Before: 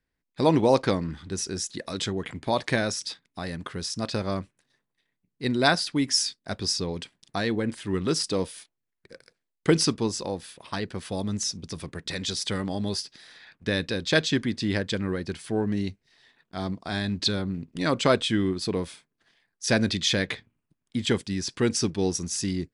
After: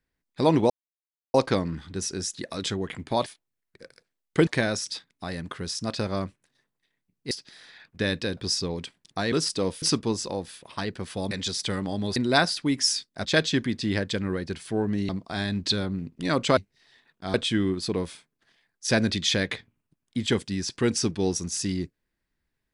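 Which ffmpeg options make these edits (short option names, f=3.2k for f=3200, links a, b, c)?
-filter_complex "[0:a]asplit=14[a][b][c][d][e][f][g][h][i][j][k][l][m][n];[a]atrim=end=0.7,asetpts=PTS-STARTPTS,afade=t=out:st=0.696:d=0.004:c=hsin,apad=pad_dur=0.64[o];[b]atrim=start=0.7:end=2.622,asetpts=PTS-STARTPTS,afade=t=in:d=0.004:c=hsin[p];[c]atrim=start=8.558:end=9.772[q];[d]atrim=start=2.618:end=5.462[r];[e]atrim=start=12.978:end=14.042[s];[f]atrim=start=6.548:end=7.502[t];[g]atrim=start=8.058:end=8.562[u];[h]atrim=start=9.768:end=11.262[v];[i]atrim=start=12.128:end=12.982[w];[j]atrim=start=5.458:end=6.552[x];[k]atrim=start=14.038:end=15.882[y];[l]atrim=start=16.648:end=18.132[z];[m]atrim=start=15.878:end=16.652[aa];[n]atrim=start=18.128[ab];[o][p]concat=n=2:v=0:a=1[ac];[ac][q]acrossfade=d=0.004:c1=hsin:c2=hsin[ad];[ad][r]acrossfade=d=0.004:c1=hsin:c2=hsin[ae];[ae][s]acrossfade=d=0.004:c1=hsin:c2=hsin[af];[af][t]acrossfade=d=0.004:c1=hsin:c2=hsin[ag];[ag][u]acrossfade=d=0.004:c1=hsin:c2=hsin[ah];[ah][v]acrossfade=d=0.004:c1=hsin:c2=hsin[ai];[ai][w]acrossfade=d=0.004:c1=hsin:c2=hsin[aj];[aj][x]acrossfade=d=0.004:c1=hsin:c2=hsin[ak];[ak][y]acrossfade=d=0.004:c1=hsin:c2=hsin[al];[al][z]acrossfade=d=0.004:c1=hsin:c2=hsin[am];[am][aa]acrossfade=d=0.004:c1=hsin:c2=hsin[an];[an][ab]acrossfade=d=0.004:c1=hsin:c2=hsin"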